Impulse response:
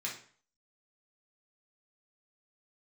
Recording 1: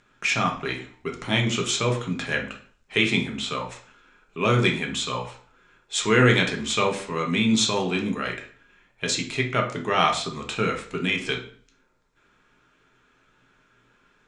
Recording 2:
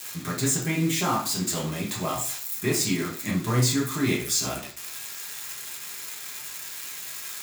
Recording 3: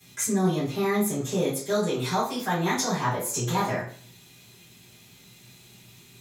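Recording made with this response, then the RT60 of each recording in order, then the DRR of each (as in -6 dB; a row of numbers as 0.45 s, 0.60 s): 2; 0.45 s, 0.45 s, 0.45 s; 1.5 dB, -4.5 dB, -13.0 dB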